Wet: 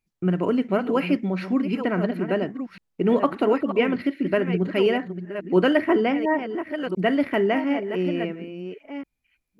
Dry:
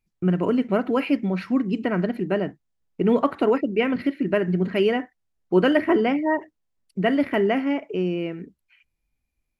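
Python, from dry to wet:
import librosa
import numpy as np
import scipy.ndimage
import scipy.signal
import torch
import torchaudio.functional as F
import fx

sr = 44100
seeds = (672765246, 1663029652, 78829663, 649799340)

y = fx.reverse_delay(x, sr, ms=695, wet_db=-9.5)
y = fx.low_shelf(y, sr, hz=100.0, db=-6.5)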